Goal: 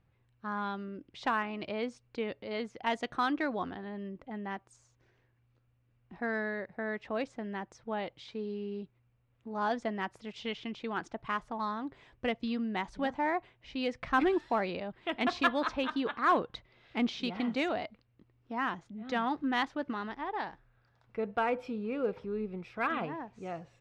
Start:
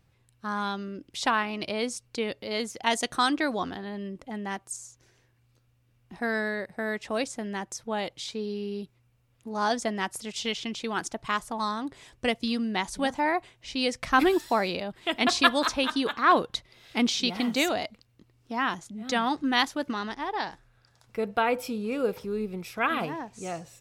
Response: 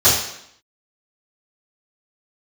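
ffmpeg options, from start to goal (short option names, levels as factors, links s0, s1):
-filter_complex "[0:a]lowpass=2500,asplit=2[s0][s1];[s1]asoftclip=type=hard:threshold=0.0944,volume=0.376[s2];[s0][s2]amix=inputs=2:normalize=0,volume=0.422"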